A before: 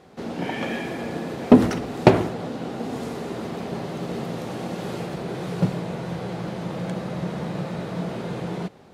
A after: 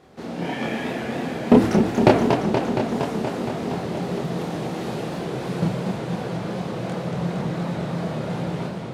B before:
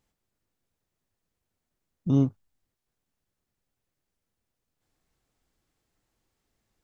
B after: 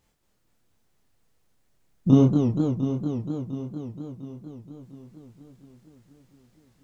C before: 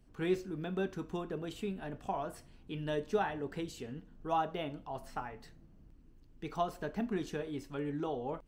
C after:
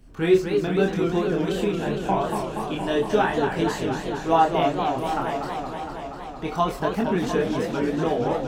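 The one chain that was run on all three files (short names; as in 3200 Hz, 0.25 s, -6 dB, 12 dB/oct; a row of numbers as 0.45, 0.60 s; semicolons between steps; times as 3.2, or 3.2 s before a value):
chorus voices 2, 0.27 Hz, delay 27 ms, depth 4.6 ms; warbling echo 0.234 s, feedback 78%, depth 208 cents, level -6 dB; match loudness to -24 LUFS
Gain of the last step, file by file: +3.0, +11.0, +15.5 dB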